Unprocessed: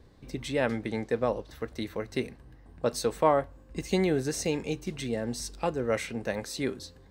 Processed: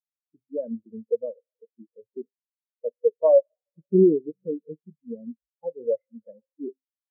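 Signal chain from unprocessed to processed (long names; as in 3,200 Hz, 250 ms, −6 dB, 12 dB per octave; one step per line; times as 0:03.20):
high-shelf EQ 2,600 Hz −11.5 dB
on a send at −13.5 dB: convolution reverb RT60 3.9 s, pre-delay 7 ms
on the sum: noise reduction from a noise print of the clip's start 14 dB
in parallel at +2 dB: brickwall limiter −20 dBFS, peak gain reduction 8.5 dB
on the sum: hum removal 132.9 Hz, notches 30
every bin expanded away from the loudest bin 4 to 1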